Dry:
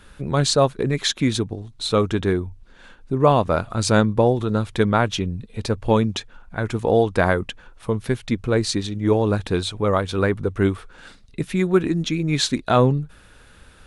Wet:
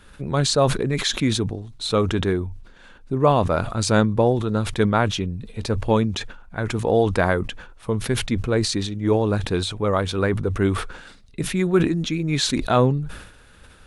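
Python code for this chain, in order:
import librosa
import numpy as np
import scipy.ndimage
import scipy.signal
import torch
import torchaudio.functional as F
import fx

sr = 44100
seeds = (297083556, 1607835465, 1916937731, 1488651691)

y = fx.sustainer(x, sr, db_per_s=71.0)
y = F.gain(torch.from_numpy(y), -1.5).numpy()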